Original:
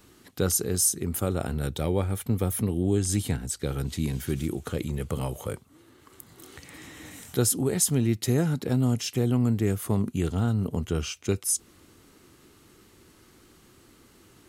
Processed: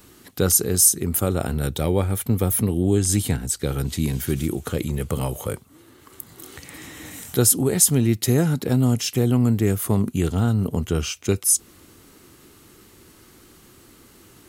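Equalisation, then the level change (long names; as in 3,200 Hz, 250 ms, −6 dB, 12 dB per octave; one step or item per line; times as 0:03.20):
high-shelf EQ 12,000 Hz +9.5 dB
+5.0 dB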